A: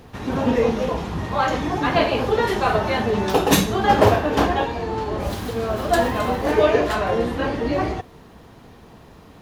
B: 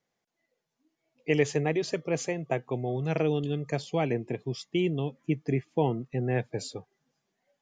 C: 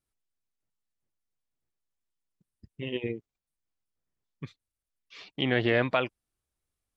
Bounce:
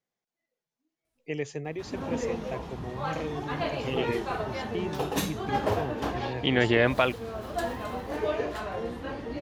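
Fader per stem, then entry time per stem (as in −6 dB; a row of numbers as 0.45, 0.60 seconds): −12.5, −8.0, +2.5 decibels; 1.65, 0.00, 1.05 seconds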